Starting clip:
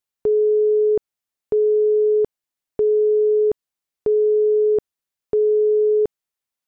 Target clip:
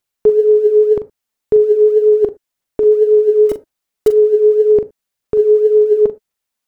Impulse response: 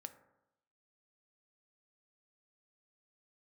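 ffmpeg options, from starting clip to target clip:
-filter_complex "[0:a]aphaser=in_gain=1:out_gain=1:delay=4.7:decay=0.38:speed=1.9:type=sinusoidal,asettb=1/sr,asplit=3[link_01][link_02][link_03];[link_01]atrim=end=3.494[link_04];[link_02]atrim=start=3.49:end=4.08,asetpts=PTS-STARTPTS,afade=type=in:duration=0.004:curve=qsin,afade=type=out:start_time=0.586:duration=0.004:curve=qsin,acrusher=bits=5:mode=log:mix=0:aa=0.000001[link_05];[link_03]atrim=start=4.076[link_06];[link_04][link_05]acrossfade=duration=0.004:curve1=hsin:curve2=qsin[link_07];[link_07][link_06]acrossfade=duration=0.004:curve1=qsin:curve2=hsin,asplit=2[link_08][link_09];[1:a]atrim=start_sample=2205,atrim=end_sample=3528,adelay=41[link_10];[link_09][link_10]afir=irnorm=-1:irlink=0,volume=-4.5dB[link_11];[link_08][link_11]amix=inputs=2:normalize=0,volume=6dB"

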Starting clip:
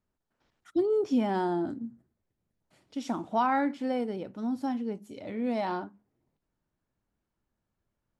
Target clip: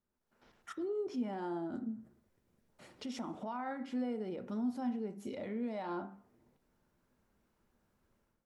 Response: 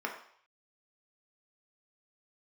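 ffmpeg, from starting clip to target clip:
-filter_complex "[0:a]acompressor=threshold=-45dB:ratio=2.5,alimiter=level_in=17dB:limit=-24dB:level=0:latency=1:release=96,volume=-17dB,dynaudnorm=framelen=110:gausssize=5:maxgain=13dB,asetrate=42777,aresample=44100,asplit=2[link_01][link_02];[1:a]atrim=start_sample=2205,asetrate=48510,aresample=44100,lowshelf=frequency=330:gain=10.5[link_03];[link_02][link_03]afir=irnorm=-1:irlink=0,volume=-9dB[link_04];[link_01][link_04]amix=inputs=2:normalize=0,volume=-8dB"

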